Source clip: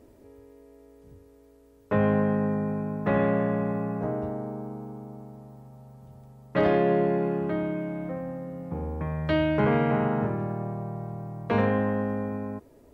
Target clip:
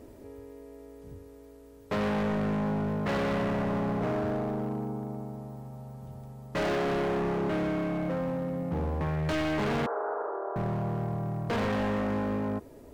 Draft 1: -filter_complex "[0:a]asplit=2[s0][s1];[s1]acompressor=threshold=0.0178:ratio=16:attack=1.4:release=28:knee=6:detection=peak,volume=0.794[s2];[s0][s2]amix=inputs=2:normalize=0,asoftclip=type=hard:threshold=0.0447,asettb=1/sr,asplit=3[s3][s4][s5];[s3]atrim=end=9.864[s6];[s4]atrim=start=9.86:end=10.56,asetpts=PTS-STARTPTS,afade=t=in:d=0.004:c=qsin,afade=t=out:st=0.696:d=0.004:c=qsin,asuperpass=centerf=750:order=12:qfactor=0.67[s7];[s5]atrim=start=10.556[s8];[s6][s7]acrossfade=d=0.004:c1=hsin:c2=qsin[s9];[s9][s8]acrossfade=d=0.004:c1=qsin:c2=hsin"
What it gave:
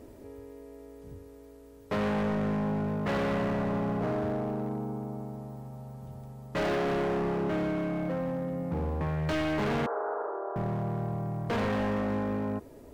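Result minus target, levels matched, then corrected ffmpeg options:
compression: peak gain reduction +8 dB
-filter_complex "[0:a]asplit=2[s0][s1];[s1]acompressor=threshold=0.0473:ratio=16:attack=1.4:release=28:knee=6:detection=peak,volume=0.794[s2];[s0][s2]amix=inputs=2:normalize=0,asoftclip=type=hard:threshold=0.0447,asettb=1/sr,asplit=3[s3][s4][s5];[s3]atrim=end=9.864[s6];[s4]atrim=start=9.86:end=10.56,asetpts=PTS-STARTPTS,afade=t=in:d=0.004:c=qsin,afade=t=out:st=0.696:d=0.004:c=qsin,asuperpass=centerf=750:order=12:qfactor=0.67[s7];[s5]atrim=start=10.556[s8];[s6][s7]acrossfade=d=0.004:c1=hsin:c2=qsin[s9];[s9][s8]acrossfade=d=0.004:c1=qsin:c2=hsin"

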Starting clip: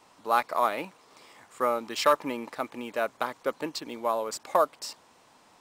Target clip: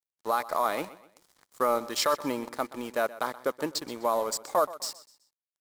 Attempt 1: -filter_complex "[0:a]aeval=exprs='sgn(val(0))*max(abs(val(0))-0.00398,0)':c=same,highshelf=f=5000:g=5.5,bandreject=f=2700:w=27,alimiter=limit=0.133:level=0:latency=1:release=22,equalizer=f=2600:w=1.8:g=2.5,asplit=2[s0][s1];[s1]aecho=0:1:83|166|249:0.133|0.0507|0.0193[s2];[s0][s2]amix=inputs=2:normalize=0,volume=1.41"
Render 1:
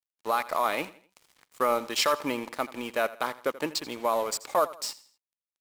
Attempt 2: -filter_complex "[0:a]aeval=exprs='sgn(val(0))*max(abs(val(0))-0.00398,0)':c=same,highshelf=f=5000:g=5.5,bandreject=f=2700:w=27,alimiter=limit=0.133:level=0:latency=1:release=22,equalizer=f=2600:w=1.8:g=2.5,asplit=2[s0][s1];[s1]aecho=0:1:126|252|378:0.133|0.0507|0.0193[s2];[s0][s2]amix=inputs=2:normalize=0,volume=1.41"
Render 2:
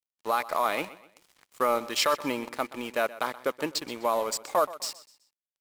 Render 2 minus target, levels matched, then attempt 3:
2 kHz band +2.5 dB
-filter_complex "[0:a]aeval=exprs='sgn(val(0))*max(abs(val(0))-0.00398,0)':c=same,highshelf=f=5000:g=5.5,bandreject=f=2700:w=27,alimiter=limit=0.133:level=0:latency=1:release=22,equalizer=f=2600:w=1.8:g=-6,asplit=2[s0][s1];[s1]aecho=0:1:126|252|378:0.133|0.0507|0.0193[s2];[s0][s2]amix=inputs=2:normalize=0,volume=1.41"

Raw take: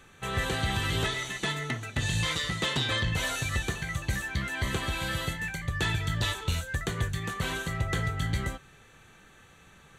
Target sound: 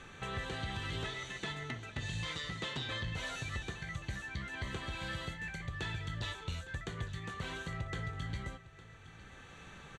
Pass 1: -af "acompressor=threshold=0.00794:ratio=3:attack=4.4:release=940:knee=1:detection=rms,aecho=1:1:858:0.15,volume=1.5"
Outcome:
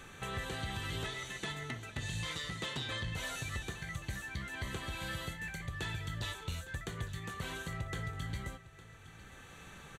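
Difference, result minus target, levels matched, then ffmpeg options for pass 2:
8 kHz band +4.5 dB
-af "acompressor=threshold=0.00794:ratio=3:attack=4.4:release=940:knee=1:detection=rms,lowpass=6200,aecho=1:1:858:0.15,volume=1.5"

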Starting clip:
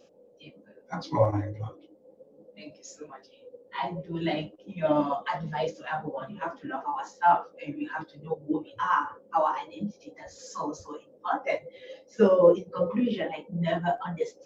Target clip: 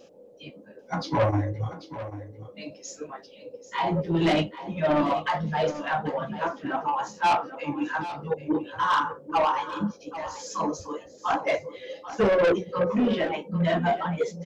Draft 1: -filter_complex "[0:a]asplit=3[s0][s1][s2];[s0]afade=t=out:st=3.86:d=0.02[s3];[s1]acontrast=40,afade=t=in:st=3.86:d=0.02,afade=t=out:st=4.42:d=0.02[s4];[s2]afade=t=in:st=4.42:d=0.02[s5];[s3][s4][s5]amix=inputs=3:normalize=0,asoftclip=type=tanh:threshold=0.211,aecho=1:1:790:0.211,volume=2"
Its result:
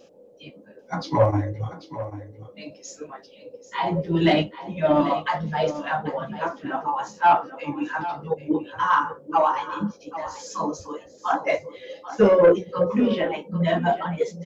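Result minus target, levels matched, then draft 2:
saturation: distortion -10 dB
-filter_complex "[0:a]asplit=3[s0][s1][s2];[s0]afade=t=out:st=3.86:d=0.02[s3];[s1]acontrast=40,afade=t=in:st=3.86:d=0.02,afade=t=out:st=4.42:d=0.02[s4];[s2]afade=t=in:st=4.42:d=0.02[s5];[s3][s4][s5]amix=inputs=3:normalize=0,asoftclip=type=tanh:threshold=0.0668,aecho=1:1:790:0.211,volume=2"

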